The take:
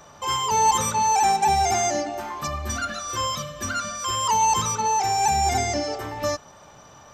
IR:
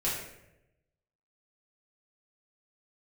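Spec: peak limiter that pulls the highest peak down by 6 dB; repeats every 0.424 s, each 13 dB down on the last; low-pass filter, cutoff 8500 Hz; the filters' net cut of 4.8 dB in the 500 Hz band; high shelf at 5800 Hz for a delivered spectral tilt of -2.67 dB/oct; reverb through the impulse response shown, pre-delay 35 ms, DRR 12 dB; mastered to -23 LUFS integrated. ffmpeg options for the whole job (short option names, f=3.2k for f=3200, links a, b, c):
-filter_complex "[0:a]lowpass=8.5k,equalizer=f=500:t=o:g=-6.5,highshelf=f=5.8k:g=-7,alimiter=limit=-17.5dB:level=0:latency=1,aecho=1:1:424|848|1272:0.224|0.0493|0.0108,asplit=2[a][b];[1:a]atrim=start_sample=2205,adelay=35[c];[b][c]afir=irnorm=-1:irlink=0,volume=-19.5dB[d];[a][d]amix=inputs=2:normalize=0,volume=3.5dB"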